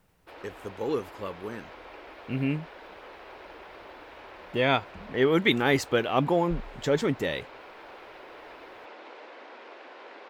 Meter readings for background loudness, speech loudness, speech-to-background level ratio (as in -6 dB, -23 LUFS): -46.5 LUFS, -27.5 LUFS, 19.0 dB